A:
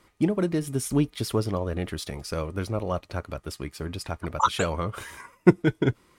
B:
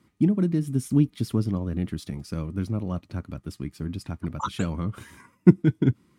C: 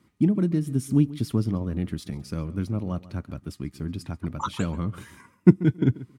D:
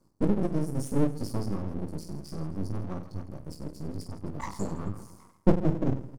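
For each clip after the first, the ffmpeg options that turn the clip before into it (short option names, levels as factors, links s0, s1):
-af "highpass=93,lowshelf=f=350:t=q:w=1.5:g=11,volume=0.422"
-filter_complex "[0:a]asplit=2[s0][s1];[s1]adelay=137,lowpass=f=4800:p=1,volume=0.126,asplit=2[s2][s3];[s3]adelay=137,lowpass=f=4800:p=1,volume=0.15[s4];[s0][s2][s4]amix=inputs=3:normalize=0"
-af "aecho=1:1:20|50|95|162.5|263.8:0.631|0.398|0.251|0.158|0.1,afftfilt=real='re*(1-between(b*sr/4096,1200,4300))':imag='im*(1-between(b*sr/4096,1200,4300))':win_size=4096:overlap=0.75,aeval=exprs='max(val(0),0)':c=same,volume=0.841"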